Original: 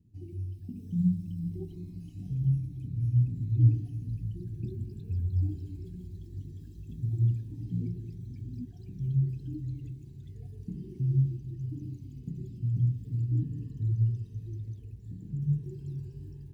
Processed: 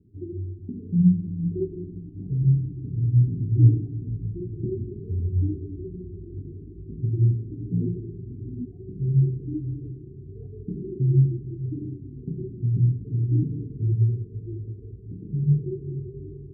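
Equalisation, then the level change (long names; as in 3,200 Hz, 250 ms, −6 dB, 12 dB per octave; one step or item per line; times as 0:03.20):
dynamic equaliser 160 Hz, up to +4 dB, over −36 dBFS, Q 1.6
low-pass with resonance 400 Hz, resonance Q 4.9
+3.0 dB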